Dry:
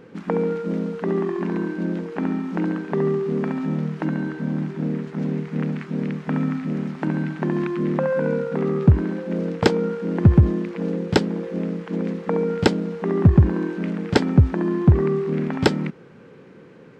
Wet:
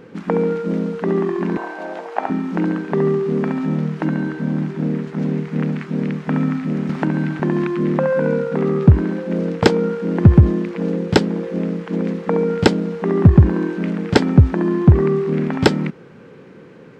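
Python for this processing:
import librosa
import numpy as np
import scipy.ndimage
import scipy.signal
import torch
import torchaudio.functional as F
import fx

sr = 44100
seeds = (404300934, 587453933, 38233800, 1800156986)

y = fx.highpass_res(x, sr, hz=720.0, q=4.9, at=(1.57, 2.3))
y = fx.band_squash(y, sr, depth_pct=70, at=(6.89, 7.4))
y = y * librosa.db_to_amplitude(4.0)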